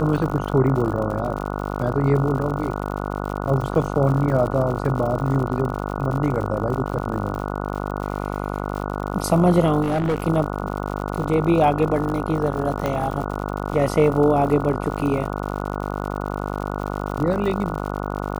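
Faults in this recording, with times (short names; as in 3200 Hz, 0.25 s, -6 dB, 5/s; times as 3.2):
buzz 50 Hz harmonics 29 -27 dBFS
crackle 92/s -29 dBFS
9.82–10.24 clipped -17.5 dBFS
12.86 pop -11 dBFS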